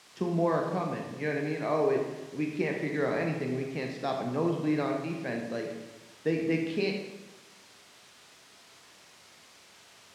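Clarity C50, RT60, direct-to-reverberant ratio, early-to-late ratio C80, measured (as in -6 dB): 4.0 dB, 1.1 s, 1.5 dB, 6.0 dB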